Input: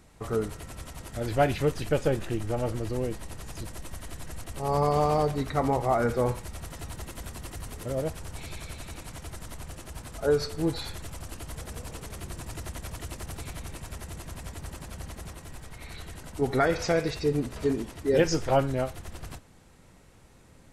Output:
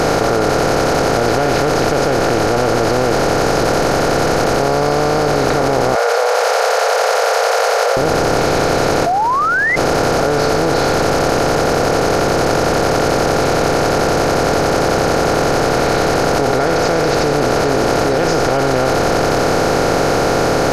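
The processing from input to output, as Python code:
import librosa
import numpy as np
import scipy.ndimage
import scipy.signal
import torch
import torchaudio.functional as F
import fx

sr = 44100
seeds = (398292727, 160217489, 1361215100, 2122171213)

y = fx.bin_compress(x, sr, power=0.2)
y = fx.cheby1_highpass(y, sr, hz=460.0, order=6, at=(5.95, 7.97))
y = fx.spec_paint(y, sr, seeds[0], shape='rise', start_s=9.06, length_s=0.7, low_hz=670.0, high_hz=2100.0, level_db=-8.0)
y = fx.env_flatten(y, sr, amount_pct=100)
y = F.gain(torch.from_numpy(y), -7.0).numpy()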